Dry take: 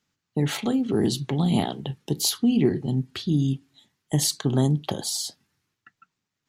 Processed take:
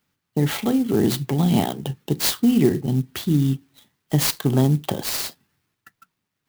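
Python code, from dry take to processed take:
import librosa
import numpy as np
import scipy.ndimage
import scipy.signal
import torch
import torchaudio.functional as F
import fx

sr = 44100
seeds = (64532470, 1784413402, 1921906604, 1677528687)

y = fx.clock_jitter(x, sr, seeds[0], jitter_ms=0.036)
y = y * librosa.db_to_amplitude(3.5)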